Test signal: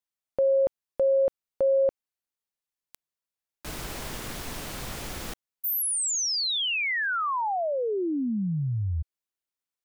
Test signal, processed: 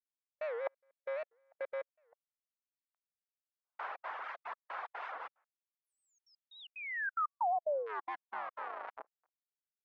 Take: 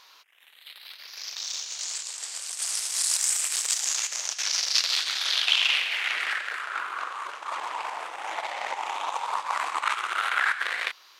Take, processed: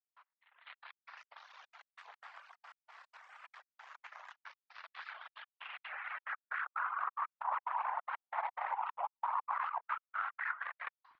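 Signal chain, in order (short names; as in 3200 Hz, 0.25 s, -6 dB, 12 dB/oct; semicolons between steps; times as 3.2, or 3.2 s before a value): octaver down 2 oct, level +3 dB; in parallel at -10 dB: wrapped overs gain 21.5 dB; on the sum: HPF 760 Hz 24 dB/oct; expander -45 dBFS; reverse; compressor 16:1, threshold -35 dBFS; reverse; speakerphone echo 0.24 s, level -24 dB; step gate "..xx.xxxx.x" 182 bpm -60 dB; ladder low-pass 1800 Hz, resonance 20%; reverb removal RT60 1.1 s; record warp 78 rpm, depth 250 cents; gain +9.5 dB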